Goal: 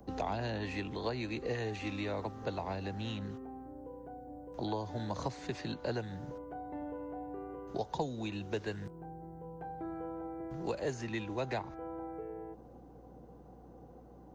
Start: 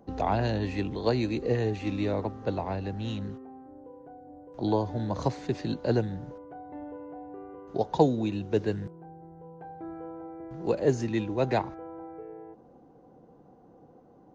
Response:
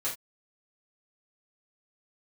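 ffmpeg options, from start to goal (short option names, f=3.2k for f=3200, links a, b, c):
-filter_complex "[0:a]aeval=exprs='val(0)+0.00126*(sin(2*PI*60*n/s)+sin(2*PI*2*60*n/s)/2+sin(2*PI*3*60*n/s)/3+sin(2*PI*4*60*n/s)/4+sin(2*PI*5*60*n/s)/5)':c=same,crystalizer=i=1:c=0,acrossover=split=100|710|3300[a][b][c][d];[a]acompressor=threshold=-50dB:ratio=4[e];[b]acompressor=threshold=-39dB:ratio=4[f];[c]acompressor=threshold=-39dB:ratio=4[g];[d]acompressor=threshold=-54dB:ratio=4[h];[e][f][g][h]amix=inputs=4:normalize=0"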